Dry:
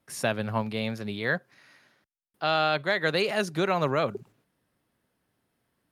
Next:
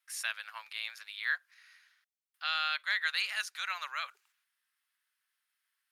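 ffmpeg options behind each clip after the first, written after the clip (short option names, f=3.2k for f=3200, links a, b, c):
-af "highpass=f=1.4k:w=0.5412,highpass=f=1.4k:w=1.3066,volume=-2dB"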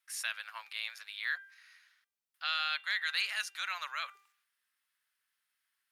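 -filter_complex "[0:a]bandreject=f=396.3:t=h:w=4,bandreject=f=792.6:t=h:w=4,bandreject=f=1.1889k:t=h:w=4,bandreject=f=1.5852k:t=h:w=4,bandreject=f=1.9815k:t=h:w=4,bandreject=f=2.3778k:t=h:w=4,bandreject=f=2.7741k:t=h:w=4,bandreject=f=3.1704k:t=h:w=4,bandreject=f=3.5667k:t=h:w=4,acrossover=split=1900[a][b];[a]alimiter=level_in=8dB:limit=-24dB:level=0:latency=1:release=30,volume=-8dB[c];[c][b]amix=inputs=2:normalize=0"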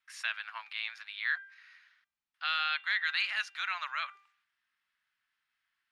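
-af "crystalizer=i=1:c=0,lowpass=2.9k,equalizer=f=480:t=o:w=0.55:g=-13,volume=3.5dB"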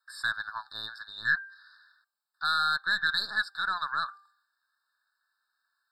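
-af "highpass=790,aeval=exprs='0.126*(cos(1*acos(clip(val(0)/0.126,-1,1)))-cos(1*PI/2))+0.00631*(cos(3*acos(clip(val(0)/0.126,-1,1)))-cos(3*PI/2))+0.00251*(cos(6*acos(clip(val(0)/0.126,-1,1)))-cos(6*PI/2))':c=same,afftfilt=real='re*eq(mod(floor(b*sr/1024/1800),2),0)':imag='im*eq(mod(floor(b*sr/1024/1800),2),0)':win_size=1024:overlap=0.75,volume=8.5dB"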